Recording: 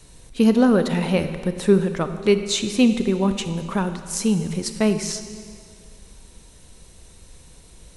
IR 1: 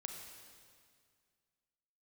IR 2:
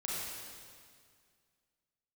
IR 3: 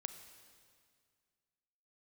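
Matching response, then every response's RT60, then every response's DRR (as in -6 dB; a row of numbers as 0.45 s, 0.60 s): 3; 2.0 s, 2.0 s, 2.1 s; 3.0 dB, -6.5 dB, 8.5 dB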